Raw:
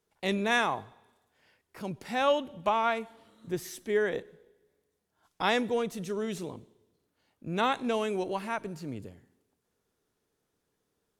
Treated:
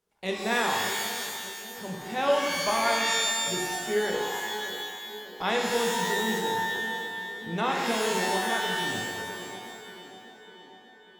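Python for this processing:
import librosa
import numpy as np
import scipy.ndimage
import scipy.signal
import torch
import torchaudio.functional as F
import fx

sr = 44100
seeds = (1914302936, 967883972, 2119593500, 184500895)

y = fx.hum_notches(x, sr, base_hz=50, count=9)
y = fx.echo_banded(y, sr, ms=593, feedback_pct=66, hz=320.0, wet_db=-11.5)
y = fx.rev_shimmer(y, sr, seeds[0], rt60_s=1.7, semitones=12, shimmer_db=-2, drr_db=0.5)
y = y * 10.0 ** (-2.0 / 20.0)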